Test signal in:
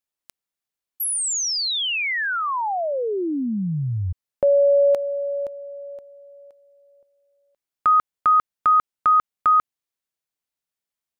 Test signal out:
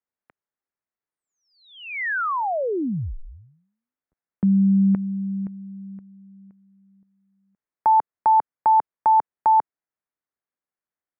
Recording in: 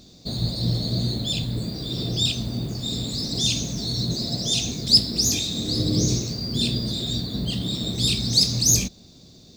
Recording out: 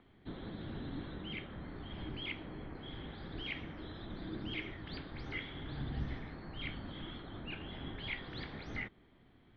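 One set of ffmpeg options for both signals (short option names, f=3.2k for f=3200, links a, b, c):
-af "highpass=f=260:w=0.5412,highpass=f=260:w=1.3066,highpass=f=480:t=q:w=0.5412,highpass=f=480:t=q:w=1.307,lowpass=f=2.4k:t=q:w=0.5176,lowpass=f=2.4k:t=q:w=0.7071,lowpass=f=2.4k:t=q:w=1.932,afreqshift=-370"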